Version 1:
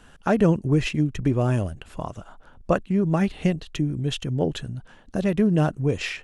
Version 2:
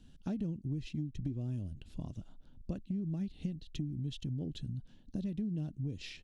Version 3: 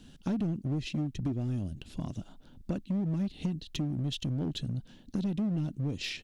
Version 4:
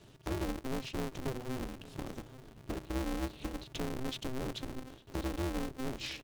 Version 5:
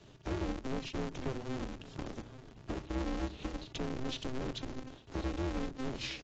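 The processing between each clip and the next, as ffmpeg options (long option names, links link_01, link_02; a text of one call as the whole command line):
ffmpeg -i in.wav -af "firequalizer=gain_entry='entry(270,0);entry(440,-13);entry(1200,-23);entry(3800,-3);entry(7800,-12)':delay=0.05:min_phase=1,acompressor=threshold=-30dB:ratio=6,volume=-4.5dB" out.wav
ffmpeg -i in.wav -filter_complex "[0:a]lowshelf=frequency=110:gain=-11.5,asplit=2[link_01][link_02];[link_02]aeval=exprs='0.01*(abs(mod(val(0)/0.01+3,4)-2)-1)':channel_layout=same,volume=-7dB[link_03];[link_01][link_03]amix=inputs=2:normalize=0,volume=7.5dB" out.wav
ffmpeg -i in.wav -filter_complex "[0:a]bandreject=frequency=60:width_type=h:width=6,bandreject=frequency=120:width_type=h:width=6,bandreject=frequency=180:width_type=h:width=6,bandreject=frequency=240:width_type=h:width=6,asplit=2[link_01][link_02];[link_02]adelay=852,lowpass=frequency=2000:poles=1,volume=-17.5dB,asplit=2[link_03][link_04];[link_04]adelay=852,lowpass=frequency=2000:poles=1,volume=0.55,asplit=2[link_05][link_06];[link_06]adelay=852,lowpass=frequency=2000:poles=1,volume=0.55,asplit=2[link_07][link_08];[link_08]adelay=852,lowpass=frequency=2000:poles=1,volume=0.55,asplit=2[link_09][link_10];[link_10]adelay=852,lowpass=frequency=2000:poles=1,volume=0.55[link_11];[link_01][link_03][link_05][link_07][link_09][link_11]amix=inputs=6:normalize=0,aeval=exprs='val(0)*sgn(sin(2*PI*130*n/s))':channel_layout=same,volume=-4.5dB" out.wav
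ffmpeg -i in.wav -filter_complex "[0:a]acrossover=split=330[link_01][link_02];[link_01]aecho=1:1:87:0.251[link_03];[link_02]asoftclip=type=hard:threshold=-31dB[link_04];[link_03][link_04]amix=inputs=2:normalize=0" -ar 16000 -c:a aac -b:a 32k out.aac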